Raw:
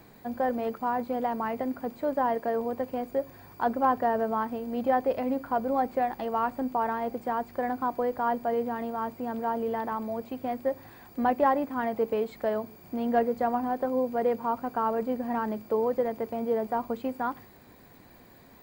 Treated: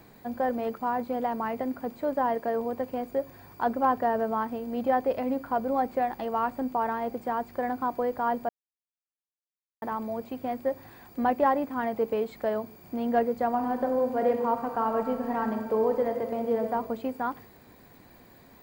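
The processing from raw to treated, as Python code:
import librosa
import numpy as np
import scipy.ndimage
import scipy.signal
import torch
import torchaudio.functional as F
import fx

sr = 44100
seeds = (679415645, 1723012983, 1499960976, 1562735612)

y = fx.reverb_throw(x, sr, start_s=13.48, length_s=3.16, rt60_s=1.4, drr_db=5.0)
y = fx.edit(y, sr, fx.silence(start_s=8.49, length_s=1.33), tone=tone)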